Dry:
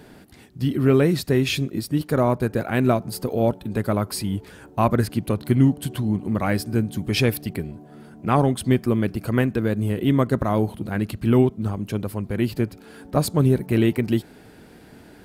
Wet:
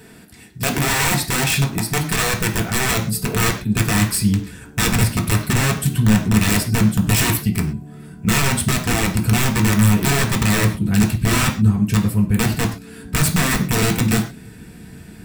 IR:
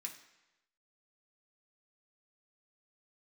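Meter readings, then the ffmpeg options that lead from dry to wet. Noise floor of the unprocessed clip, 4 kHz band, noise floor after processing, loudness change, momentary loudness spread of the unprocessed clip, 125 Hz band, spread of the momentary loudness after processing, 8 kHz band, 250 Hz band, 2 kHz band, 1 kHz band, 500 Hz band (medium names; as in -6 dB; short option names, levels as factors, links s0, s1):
-48 dBFS, +10.0 dB, -41 dBFS, +4.5 dB, 9 LU, +5.0 dB, 6 LU, +16.5 dB, +2.5 dB, +11.0 dB, +3.5 dB, -4.0 dB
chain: -filter_complex "[0:a]highshelf=f=4000:g=4,acontrast=30,aeval=exprs='(mod(3.55*val(0)+1,2)-1)/3.55':c=same,asubboost=boost=3:cutoff=250[s0];[1:a]atrim=start_sample=2205,atrim=end_sample=6174[s1];[s0][s1]afir=irnorm=-1:irlink=0,volume=1.33"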